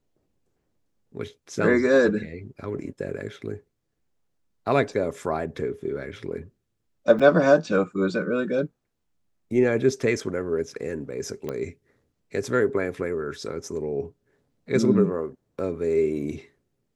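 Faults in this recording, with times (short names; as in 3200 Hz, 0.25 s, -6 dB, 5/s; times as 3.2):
7.19–7.2 gap 5.8 ms
11.49 pop -18 dBFS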